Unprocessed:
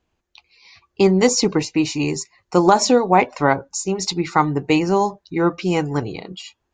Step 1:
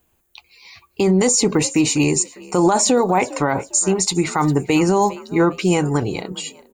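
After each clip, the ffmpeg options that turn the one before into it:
-filter_complex "[0:a]aexciter=amount=12.5:drive=4.1:freq=8000,asplit=3[s0][s1][s2];[s1]adelay=403,afreqshift=46,volume=0.0668[s3];[s2]adelay=806,afreqshift=92,volume=0.0221[s4];[s0][s3][s4]amix=inputs=3:normalize=0,alimiter=limit=0.237:level=0:latency=1:release=39,volume=1.78"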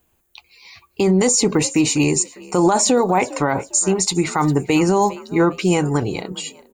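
-af anull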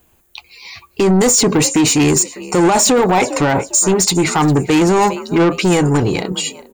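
-af "asoftclip=type=tanh:threshold=0.133,volume=2.82"

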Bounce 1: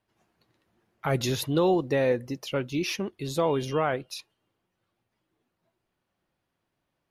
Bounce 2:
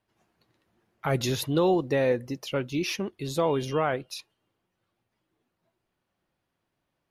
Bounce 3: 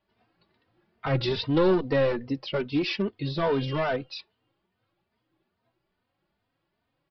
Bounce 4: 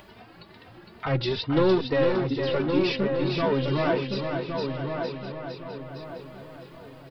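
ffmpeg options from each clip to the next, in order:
-af anull
-filter_complex "[0:a]aresample=11025,aeval=exprs='clip(val(0),-1,0.0668)':c=same,aresample=44100,asplit=2[s0][s1];[s1]adelay=3.1,afreqshift=2.4[s2];[s0][s2]amix=inputs=2:normalize=1,volume=1.78"
-filter_complex "[0:a]asplit=2[s0][s1];[s1]aecho=0:1:459|918|1377|1836:0.501|0.165|0.0546|0.018[s2];[s0][s2]amix=inputs=2:normalize=0,acompressor=mode=upward:threshold=0.0282:ratio=2.5,asplit=2[s3][s4];[s4]adelay=1114,lowpass=f=1800:p=1,volume=0.562,asplit=2[s5][s6];[s6]adelay=1114,lowpass=f=1800:p=1,volume=0.37,asplit=2[s7][s8];[s8]adelay=1114,lowpass=f=1800:p=1,volume=0.37,asplit=2[s9][s10];[s10]adelay=1114,lowpass=f=1800:p=1,volume=0.37,asplit=2[s11][s12];[s12]adelay=1114,lowpass=f=1800:p=1,volume=0.37[s13];[s5][s7][s9][s11][s13]amix=inputs=5:normalize=0[s14];[s3][s14]amix=inputs=2:normalize=0"

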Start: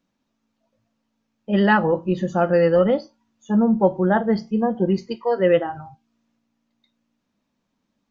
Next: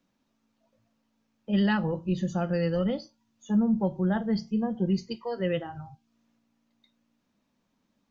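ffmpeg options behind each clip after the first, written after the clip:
-filter_complex "[0:a]acrossover=split=190|3000[s0][s1][s2];[s1]acompressor=threshold=0.002:ratio=1.5[s3];[s0][s3][s2]amix=inputs=3:normalize=0"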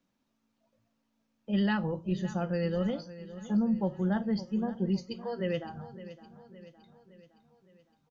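-af "aecho=1:1:563|1126|1689|2252|2815:0.178|0.0942|0.05|0.0265|0.014,volume=0.668"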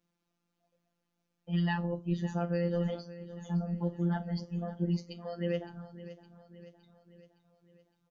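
-af "afftfilt=real='hypot(re,im)*cos(PI*b)':imag='0':win_size=1024:overlap=0.75"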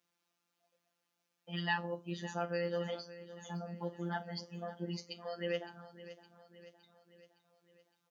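-af "highpass=f=980:p=1,volume=1.58"

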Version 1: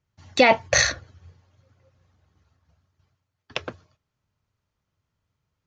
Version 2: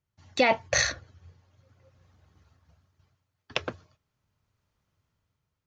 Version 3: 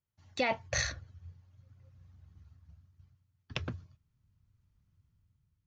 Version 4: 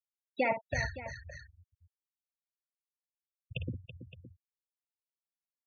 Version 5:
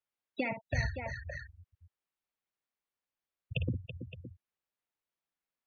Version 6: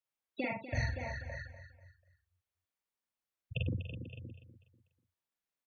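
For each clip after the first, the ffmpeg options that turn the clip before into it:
-af "dynaudnorm=f=280:g=7:m=3.55,volume=0.473"
-af "asubboost=boost=8.5:cutoff=190,volume=0.398"
-filter_complex "[0:a]afftfilt=real='re*gte(hypot(re,im),0.0501)':imag='im*gte(hypot(re,im),0.0501)':win_size=1024:overlap=0.75,lowpass=3200,asplit=2[s0][s1];[s1]aecho=0:1:54|330|566:0.282|0.266|0.178[s2];[s0][s2]amix=inputs=2:normalize=0,volume=1.19"
-filter_complex "[0:a]bass=f=250:g=-2,treble=f=4000:g=-13,acrossover=split=220|3000[s0][s1][s2];[s1]acompressor=threshold=0.00631:ratio=6[s3];[s0][s3][s2]amix=inputs=3:normalize=0,volume=2.24"
-filter_complex "[0:a]asplit=2[s0][s1];[s1]adelay=44,volume=0.75[s2];[s0][s2]amix=inputs=2:normalize=0,aecho=1:1:245|490|735:0.251|0.0854|0.029,volume=0.631"

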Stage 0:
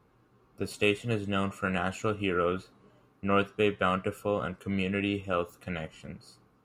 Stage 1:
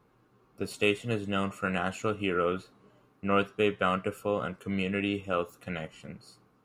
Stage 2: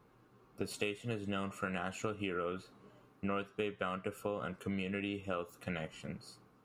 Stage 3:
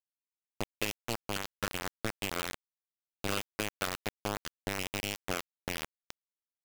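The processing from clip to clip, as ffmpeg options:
-af "equalizer=f=65:w=1.7:g=-9.5"
-af "acompressor=threshold=0.02:ratio=6"
-af "acrusher=bits=4:mix=0:aa=0.000001,volume=1.33"

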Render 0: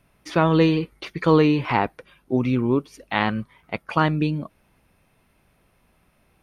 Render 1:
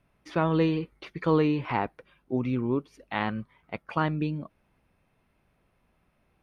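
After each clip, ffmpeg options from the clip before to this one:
-af "highshelf=f=4800:g=-10,volume=0.473"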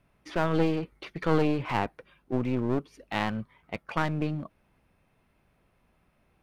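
-af "aeval=exprs='clip(val(0),-1,0.0211)':c=same,volume=1.19"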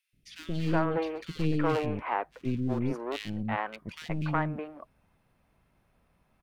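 -filter_complex "[0:a]acrossover=split=370|2400[s0][s1][s2];[s0]adelay=130[s3];[s1]adelay=370[s4];[s3][s4][s2]amix=inputs=3:normalize=0"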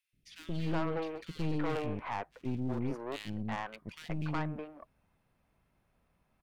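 -af "aeval=exprs='(tanh(20*val(0)+0.55)-tanh(0.55))/20':c=same,volume=0.75"

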